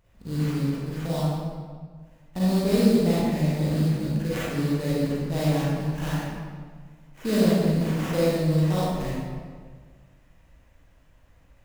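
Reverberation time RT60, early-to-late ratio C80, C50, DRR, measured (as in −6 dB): 1.6 s, −1.0 dB, −5.0 dB, −9.0 dB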